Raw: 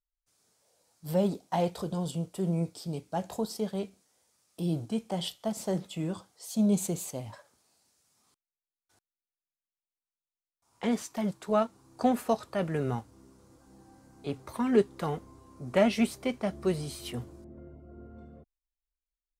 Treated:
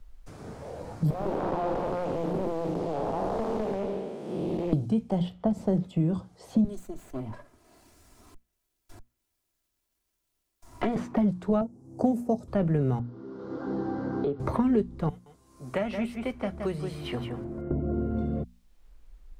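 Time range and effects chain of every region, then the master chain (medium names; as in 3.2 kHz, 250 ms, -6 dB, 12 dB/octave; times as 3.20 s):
1.10–4.73 s: spectral blur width 443 ms + high-pass 520 Hz + loudspeaker Doppler distortion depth 0.65 ms
6.64–10.96 s: comb filter that takes the minimum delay 3 ms + pre-emphasis filter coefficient 0.8
11.61–12.48 s: high-order bell 2.1 kHz -16 dB 2.4 oct + short-mantissa float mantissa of 6-bit + high-pass 160 Hz
12.99–14.40 s: cabinet simulation 250–4200 Hz, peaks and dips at 420 Hz +8 dB, 1.4 kHz +8 dB, 2.5 kHz -10 dB + compression 2.5:1, threshold -50 dBFS
15.09–17.71 s: pre-emphasis filter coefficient 0.97 + delay 169 ms -8.5 dB
whole clip: tilt EQ -4 dB/octave; hum notches 60/120/180/240 Hz; three bands compressed up and down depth 100%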